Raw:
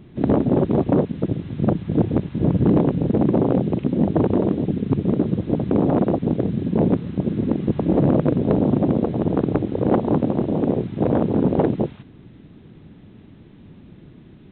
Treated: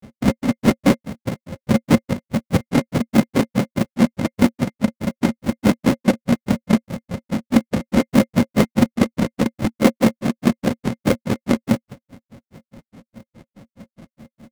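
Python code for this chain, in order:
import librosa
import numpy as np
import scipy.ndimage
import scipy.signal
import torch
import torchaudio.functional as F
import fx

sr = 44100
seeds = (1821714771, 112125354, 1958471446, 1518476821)

y = fx.halfwave_hold(x, sr)
y = fx.granulator(y, sr, seeds[0], grain_ms=118.0, per_s=4.8, spray_ms=100.0, spread_st=0)
y = fx.small_body(y, sr, hz=(230.0, 540.0, 2100.0), ring_ms=55, db=11)
y = F.gain(torch.from_numpy(y), -2.0).numpy()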